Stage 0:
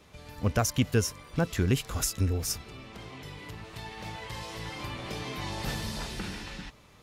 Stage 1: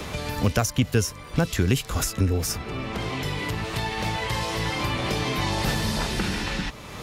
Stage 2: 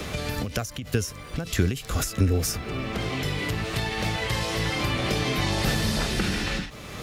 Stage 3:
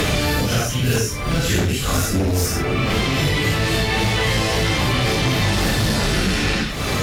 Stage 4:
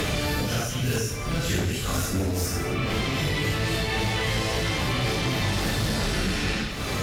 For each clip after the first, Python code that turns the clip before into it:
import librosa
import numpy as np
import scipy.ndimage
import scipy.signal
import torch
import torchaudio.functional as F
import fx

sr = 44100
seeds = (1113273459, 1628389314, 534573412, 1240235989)

y1 = fx.band_squash(x, sr, depth_pct=70)
y1 = y1 * librosa.db_to_amplitude(7.0)
y2 = fx.peak_eq(y1, sr, hz=940.0, db=-8.5, octaves=0.26)
y2 = fx.dmg_noise_colour(y2, sr, seeds[0], colour='pink', level_db=-60.0)
y2 = fx.end_taper(y2, sr, db_per_s=120.0)
y2 = y2 * librosa.db_to_amplitude(1.0)
y3 = fx.phase_scramble(y2, sr, seeds[1], window_ms=200)
y3 = fx.fold_sine(y3, sr, drive_db=9, ceiling_db=-10.0)
y3 = fx.band_squash(y3, sr, depth_pct=100)
y3 = y3 * librosa.db_to_amplitude(-4.0)
y4 = y3 + 10.0 ** (-11.0 / 20.0) * np.pad(y3, (int(168 * sr / 1000.0), 0))[:len(y3)]
y4 = y4 * librosa.db_to_amplitude(-7.0)